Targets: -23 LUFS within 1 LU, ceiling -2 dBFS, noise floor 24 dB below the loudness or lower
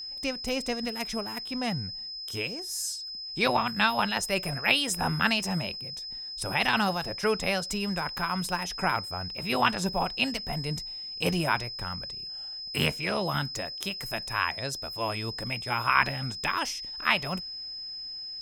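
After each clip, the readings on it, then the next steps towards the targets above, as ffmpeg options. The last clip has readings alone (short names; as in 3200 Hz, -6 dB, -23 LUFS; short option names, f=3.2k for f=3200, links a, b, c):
steady tone 5100 Hz; tone level -36 dBFS; loudness -29.0 LUFS; peak -6.0 dBFS; loudness target -23.0 LUFS
-> -af "bandreject=f=5.1k:w=30"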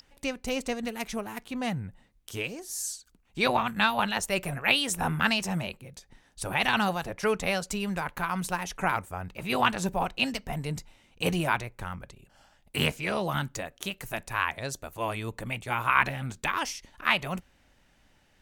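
steady tone none; loudness -29.5 LUFS; peak -6.0 dBFS; loudness target -23.0 LUFS
-> -af "volume=6.5dB,alimiter=limit=-2dB:level=0:latency=1"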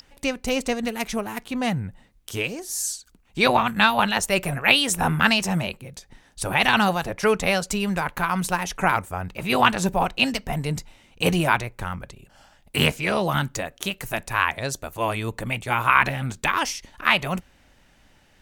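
loudness -23.0 LUFS; peak -2.0 dBFS; noise floor -58 dBFS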